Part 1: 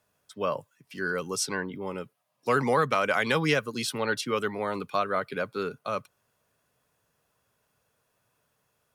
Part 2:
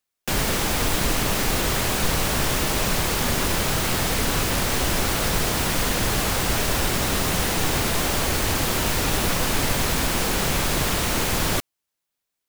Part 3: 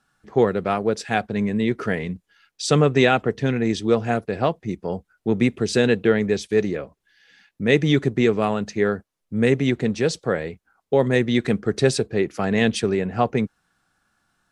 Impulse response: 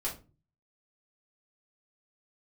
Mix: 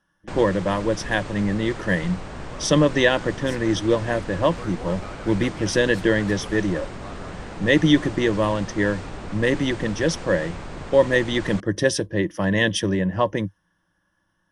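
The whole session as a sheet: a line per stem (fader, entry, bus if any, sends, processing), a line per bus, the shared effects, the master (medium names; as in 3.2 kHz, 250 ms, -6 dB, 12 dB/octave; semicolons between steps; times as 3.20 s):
-14.5 dB, 2.10 s, no send, none
+2.0 dB, 0.00 s, no send, Chebyshev low-pass 9.1 kHz, order 10; treble shelf 3 kHz -11.5 dB; auto duck -11 dB, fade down 0.45 s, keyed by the third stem
-1.0 dB, 0.00 s, no send, rippled EQ curve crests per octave 1.2, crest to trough 14 dB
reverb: none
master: tape noise reduction on one side only decoder only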